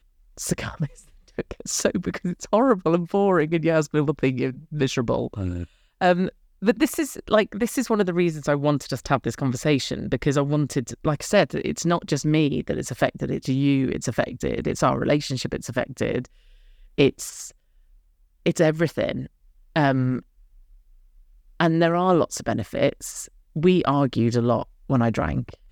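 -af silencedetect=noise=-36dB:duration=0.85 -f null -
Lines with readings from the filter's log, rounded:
silence_start: 17.50
silence_end: 18.46 | silence_duration: 0.96
silence_start: 20.20
silence_end: 21.60 | silence_duration: 1.41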